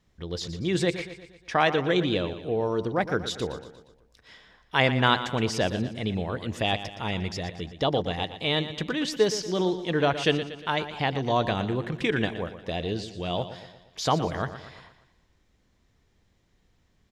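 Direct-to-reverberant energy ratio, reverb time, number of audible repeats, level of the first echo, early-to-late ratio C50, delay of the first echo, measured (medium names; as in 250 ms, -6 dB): no reverb, no reverb, 4, -12.0 dB, no reverb, 118 ms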